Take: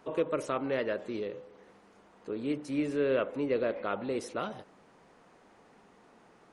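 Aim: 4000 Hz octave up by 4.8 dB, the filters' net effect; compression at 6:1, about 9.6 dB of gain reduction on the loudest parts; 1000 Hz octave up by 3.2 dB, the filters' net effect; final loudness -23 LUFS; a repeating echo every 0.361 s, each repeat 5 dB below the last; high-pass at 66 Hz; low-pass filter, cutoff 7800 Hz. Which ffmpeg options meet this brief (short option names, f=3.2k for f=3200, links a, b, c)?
-af "highpass=66,lowpass=7.8k,equalizer=f=1k:t=o:g=4,equalizer=f=4k:t=o:g=6.5,acompressor=threshold=-34dB:ratio=6,aecho=1:1:361|722|1083|1444|1805|2166|2527:0.562|0.315|0.176|0.0988|0.0553|0.031|0.0173,volume=15.5dB"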